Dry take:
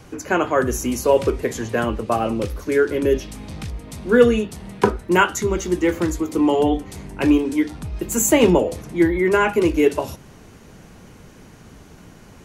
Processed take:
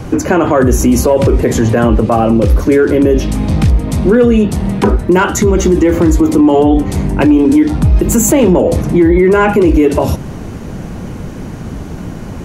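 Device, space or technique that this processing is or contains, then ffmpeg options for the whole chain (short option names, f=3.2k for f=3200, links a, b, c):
mastering chain: -af "equalizer=f=430:t=o:w=0.28:g=-3.5,acompressor=threshold=-21dB:ratio=1.5,asoftclip=type=tanh:threshold=-9.5dB,tiltshelf=f=970:g=5.5,asoftclip=type=hard:threshold=-8.5dB,alimiter=level_in=17dB:limit=-1dB:release=50:level=0:latency=1,volume=-1dB"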